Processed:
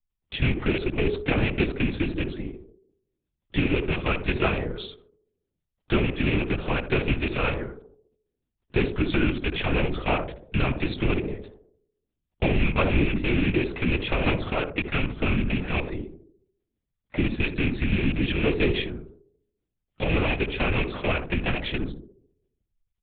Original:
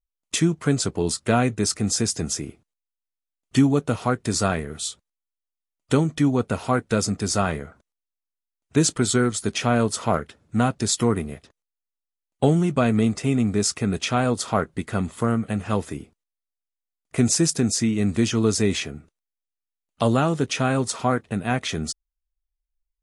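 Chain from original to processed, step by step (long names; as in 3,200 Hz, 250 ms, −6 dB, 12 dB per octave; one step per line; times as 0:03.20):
loose part that buzzes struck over −25 dBFS, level −12 dBFS
notch filter 500 Hz, Q 12
comb filter 4.8 ms, depth 53%
hum removal 113.2 Hz, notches 3
downward compressor 2.5 to 1, threshold −22 dBFS, peak gain reduction 7.5 dB
rotating-speaker cabinet horn 6 Hz
on a send: feedback echo with a band-pass in the loop 70 ms, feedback 55%, band-pass 400 Hz, level −5 dB
on the sum: linear-prediction vocoder at 8 kHz whisper
level +2 dB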